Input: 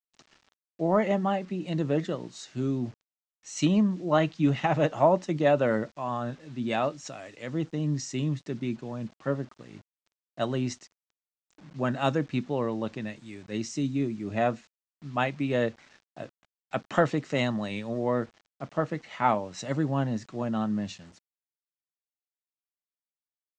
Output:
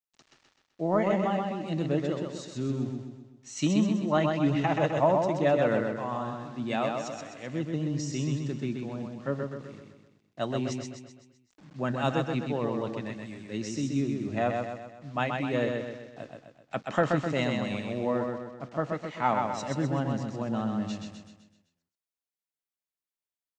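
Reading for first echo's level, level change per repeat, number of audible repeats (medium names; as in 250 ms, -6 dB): -4.0 dB, -6.0 dB, 6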